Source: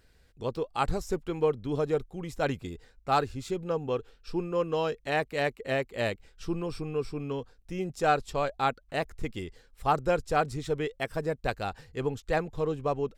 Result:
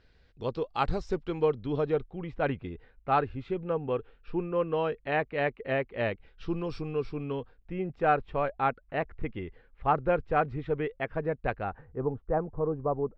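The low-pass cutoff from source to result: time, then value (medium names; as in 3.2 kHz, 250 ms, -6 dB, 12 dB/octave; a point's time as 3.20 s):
low-pass 24 dB/octave
1.51 s 4.8 kHz
2.33 s 2.8 kHz
6.12 s 2.8 kHz
6.74 s 5.2 kHz
7.79 s 2.5 kHz
11.56 s 2.5 kHz
11.99 s 1.2 kHz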